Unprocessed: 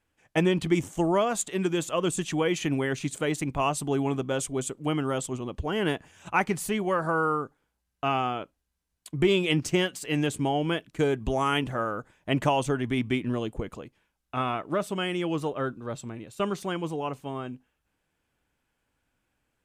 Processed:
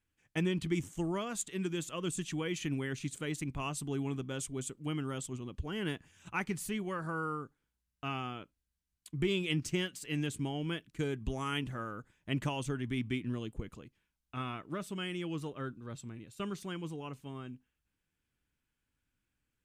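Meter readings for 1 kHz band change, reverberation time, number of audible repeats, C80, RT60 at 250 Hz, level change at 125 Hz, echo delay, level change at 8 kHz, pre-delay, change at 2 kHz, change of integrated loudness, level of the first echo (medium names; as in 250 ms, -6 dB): -13.0 dB, no reverb, no echo, no reverb, no reverb, -6.0 dB, no echo, -7.0 dB, no reverb, -9.0 dB, -9.5 dB, no echo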